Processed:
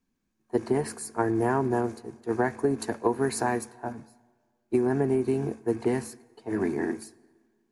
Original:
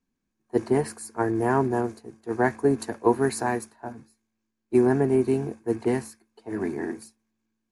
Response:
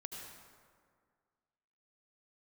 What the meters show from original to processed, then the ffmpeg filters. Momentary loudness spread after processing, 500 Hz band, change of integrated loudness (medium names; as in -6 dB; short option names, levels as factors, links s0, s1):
13 LU, -2.5 dB, -3.0 dB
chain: -filter_complex "[0:a]acompressor=threshold=0.0708:ratio=6,asplit=2[s0][s1];[1:a]atrim=start_sample=2205,asetrate=48510,aresample=44100,lowpass=8600[s2];[s1][s2]afir=irnorm=-1:irlink=0,volume=0.15[s3];[s0][s3]amix=inputs=2:normalize=0,volume=1.19"